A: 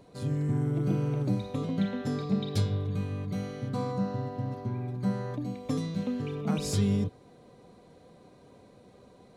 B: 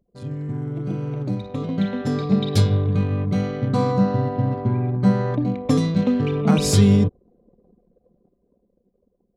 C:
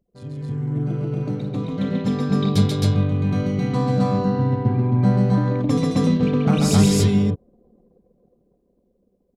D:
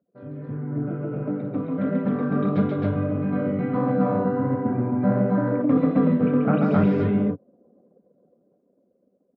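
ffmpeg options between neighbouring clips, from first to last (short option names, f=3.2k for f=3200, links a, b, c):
-af "anlmdn=0.0631,dynaudnorm=f=450:g=9:m=13dB"
-af "aecho=1:1:137|265.3:0.708|1,volume=-3dB"
-af "flanger=delay=4.2:depth=8.5:regen=-46:speed=1.5:shape=sinusoidal,highpass=f=110:w=0.5412,highpass=f=110:w=1.3066,equalizer=f=130:t=q:w=4:g=-4,equalizer=f=280:t=q:w=4:g=7,equalizer=f=590:t=q:w=4:g=10,equalizer=f=1.4k:t=q:w=4:g=9,lowpass=f=2.2k:w=0.5412,lowpass=f=2.2k:w=1.3066"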